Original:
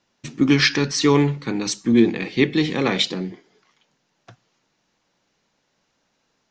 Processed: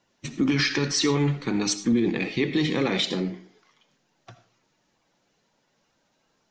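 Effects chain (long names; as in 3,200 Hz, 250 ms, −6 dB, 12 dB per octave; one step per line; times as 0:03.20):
spectral magnitudes quantised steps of 15 dB
brickwall limiter −14 dBFS, peak gain reduction 10 dB
convolution reverb RT60 0.35 s, pre-delay 40 ms, DRR 11.5 dB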